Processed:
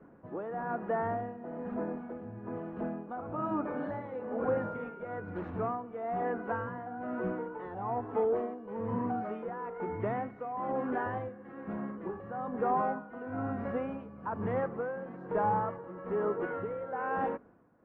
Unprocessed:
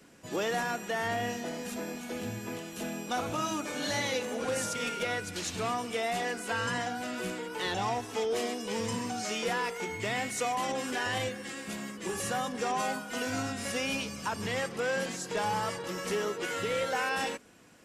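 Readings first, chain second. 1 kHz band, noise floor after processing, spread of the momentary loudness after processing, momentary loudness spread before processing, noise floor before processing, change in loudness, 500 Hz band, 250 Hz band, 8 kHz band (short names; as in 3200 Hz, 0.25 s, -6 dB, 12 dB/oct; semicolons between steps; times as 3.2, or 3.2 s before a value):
-1.0 dB, -49 dBFS, 9 LU, 7 LU, -44 dBFS, -2.5 dB, -0.5 dB, 0.0 dB, under -40 dB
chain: LPF 1300 Hz 24 dB/oct; tremolo 1.1 Hz, depth 69%; gain +3 dB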